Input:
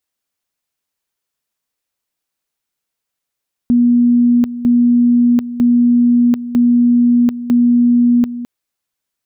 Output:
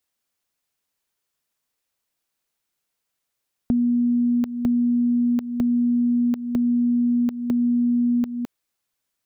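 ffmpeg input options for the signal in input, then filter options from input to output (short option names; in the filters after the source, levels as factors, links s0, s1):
-f lavfi -i "aevalsrc='pow(10,(-7.5-13.5*gte(mod(t,0.95),0.74))/20)*sin(2*PI*241*t)':d=4.75:s=44100"
-filter_complex "[0:a]acrossover=split=430[s0][s1];[s0]acompressor=threshold=0.0794:ratio=6[s2];[s1]alimiter=limit=0.112:level=0:latency=1:release=143[s3];[s2][s3]amix=inputs=2:normalize=0"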